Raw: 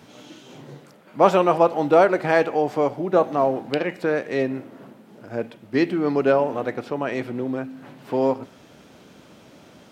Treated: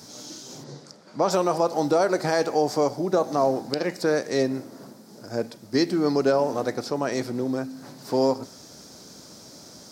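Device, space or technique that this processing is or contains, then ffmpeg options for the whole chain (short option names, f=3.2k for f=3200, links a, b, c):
over-bright horn tweeter: -filter_complex "[0:a]asplit=3[a][b][c];[a]afade=t=out:st=0.63:d=0.02[d];[b]lowpass=5.9k,afade=t=in:st=0.63:d=0.02,afade=t=out:st=1.29:d=0.02[e];[c]afade=t=in:st=1.29:d=0.02[f];[d][e][f]amix=inputs=3:normalize=0,highshelf=f=3.8k:t=q:w=3:g=10,alimiter=limit=-11dB:level=0:latency=1:release=117"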